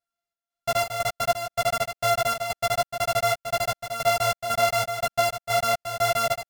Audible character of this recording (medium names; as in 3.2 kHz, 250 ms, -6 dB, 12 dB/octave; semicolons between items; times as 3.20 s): a buzz of ramps at a fixed pitch in blocks of 64 samples; chopped level 2 Hz, depth 60%, duty 65%; a shimmering, thickened sound